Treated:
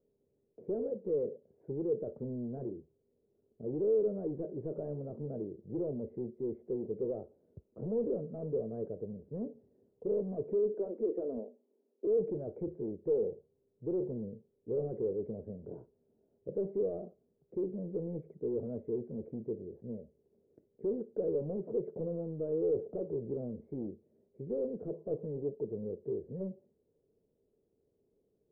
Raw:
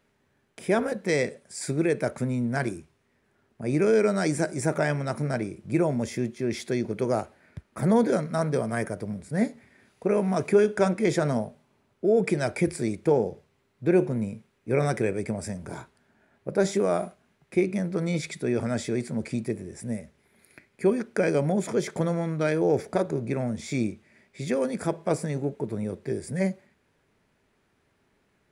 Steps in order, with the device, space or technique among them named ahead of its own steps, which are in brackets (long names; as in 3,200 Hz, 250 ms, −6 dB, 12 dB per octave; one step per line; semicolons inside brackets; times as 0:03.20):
0:10.74–0:12.07: Chebyshev high-pass filter 230 Hz, order 5
overdriven synthesiser ladder filter (soft clipping −25 dBFS, distortion −8 dB; transistor ladder low-pass 510 Hz, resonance 65%)